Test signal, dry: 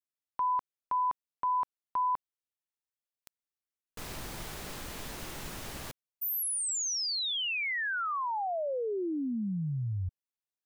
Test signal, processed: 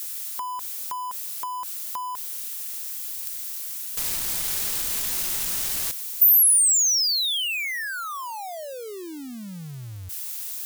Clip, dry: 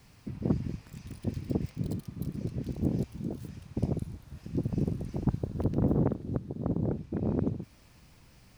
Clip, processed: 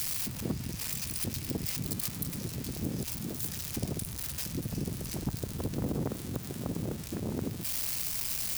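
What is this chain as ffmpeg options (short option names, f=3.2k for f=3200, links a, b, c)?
-af "aeval=exprs='val(0)+0.5*0.00891*sgn(val(0))':c=same,acompressor=threshold=-42dB:ratio=1.5:attack=66:release=82:detection=peak,crystalizer=i=7:c=0,volume=-2dB"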